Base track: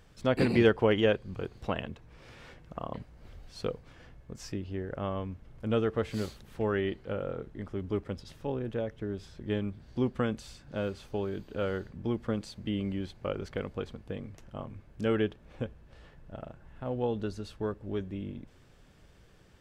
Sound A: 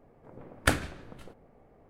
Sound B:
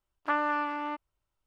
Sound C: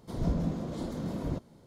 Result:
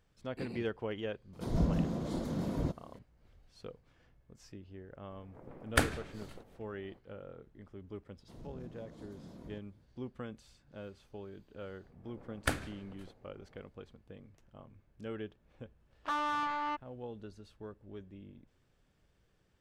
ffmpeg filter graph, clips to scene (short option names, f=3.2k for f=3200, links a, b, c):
-filter_complex "[3:a]asplit=2[a][b];[1:a]asplit=2[c][d];[0:a]volume=-13.5dB[e];[b]alimiter=level_in=1dB:limit=-24dB:level=0:latency=1:release=110,volume=-1dB[f];[2:a]asplit=2[g][h];[h]highpass=f=720:p=1,volume=22dB,asoftclip=type=tanh:threshold=-13dB[i];[g][i]amix=inputs=2:normalize=0,lowpass=f=2.9k:p=1,volume=-6dB[j];[a]atrim=end=1.66,asetpts=PTS-STARTPTS,volume=-0.5dB,afade=t=in:d=0.004:c=hsin,afade=t=out:st=1.656:d=0.004:c=hsin,adelay=1330[k];[c]atrim=end=1.89,asetpts=PTS-STARTPTS,volume=-3dB,afade=t=in:d=0.004:c=hsin,afade=t=out:st=1.886:d=0.004:c=hsin,adelay=5100[l];[f]atrim=end=1.66,asetpts=PTS-STARTPTS,volume=-16.5dB,afade=t=in:d=0.004:c=hsin,afade=t=out:st=1.656:d=0.004:c=hsin,adelay=8200[m];[d]atrim=end=1.89,asetpts=PTS-STARTPTS,volume=-7.5dB,afade=t=in:d=0.004:c=hsin,afade=t=out:st=1.886:d=0.004:c=hsin,adelay=11800[n];[j]atrim=end=1.46,asetpts=PTS-STARTPTS,volume=-11dB,afade=t=in:d=0.004:c=hsin,afade=t=out:st=1.456:d=0.004:c=hsin,adelay=15800[o];[e][k][l][m][n][o]amix=inputs=6:normalize=0"